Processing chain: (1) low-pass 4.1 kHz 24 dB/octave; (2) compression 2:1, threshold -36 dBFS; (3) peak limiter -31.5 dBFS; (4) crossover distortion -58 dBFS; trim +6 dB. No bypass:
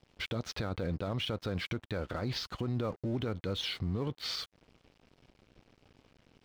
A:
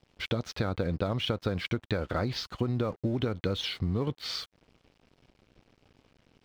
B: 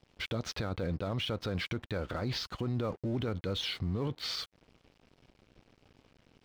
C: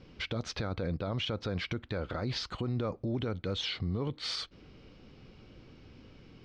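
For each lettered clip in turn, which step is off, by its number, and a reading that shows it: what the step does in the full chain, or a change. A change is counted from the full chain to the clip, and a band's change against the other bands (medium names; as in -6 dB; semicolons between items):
3, mean gain reduction 1.5 dB; 2, mean gain reduction 3.0 dB; 4, distortion -20 dB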